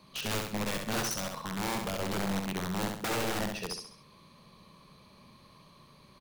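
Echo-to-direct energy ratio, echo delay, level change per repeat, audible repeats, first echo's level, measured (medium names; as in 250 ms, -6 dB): -3.5 dB, 67 ms, -7.5 dB, 4, -4.5 dB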